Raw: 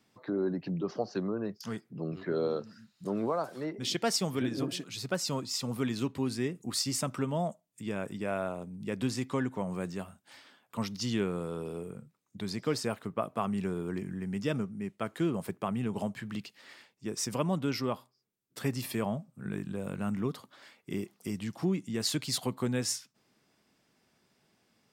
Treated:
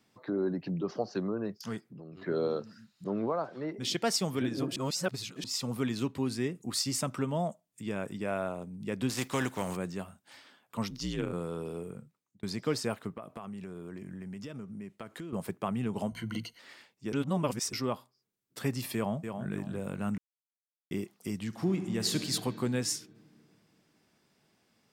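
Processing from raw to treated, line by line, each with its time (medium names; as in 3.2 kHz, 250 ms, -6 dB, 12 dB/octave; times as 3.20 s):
1.79–2.22 s: compression, threshold -44 dBFS
3.04–3.69 s: distance through air 180 m
4.76–5.44 s: reverse
9.09–9.75 s: spectral contrast reduction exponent 0.62
10.90–11.33 s: ring modulator 61 Hz
11.99–12.43 s: fade out
13.12–15.33 s: compression 8:1, threshold -38 dBFS
16.08–16.59 s: rippled EQ curve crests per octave 1.9, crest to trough 16 dB
17.13–17.73 s: reverse
18.95–19.50 s: echo throw 280 ms, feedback 30%, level -6.5 dB
20.18–20.91 s: mute
21.46–22.21 s: reverb throw, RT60 2.8 s, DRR 6 dB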